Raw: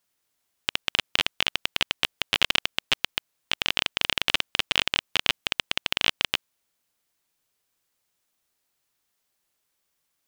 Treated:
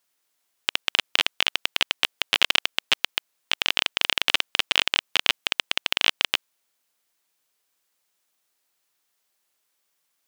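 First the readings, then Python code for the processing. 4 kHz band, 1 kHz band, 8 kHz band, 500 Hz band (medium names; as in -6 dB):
+2.5 dB, +2.0 dB, +2.5 dB, +0.5 dB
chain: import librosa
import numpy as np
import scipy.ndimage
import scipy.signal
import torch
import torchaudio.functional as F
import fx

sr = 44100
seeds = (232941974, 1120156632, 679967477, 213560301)

y = fx.highpass(x, sr, hz=370.0, slope=6)
y = F.gain(torch.from_numpy(y), 2.5).numpy()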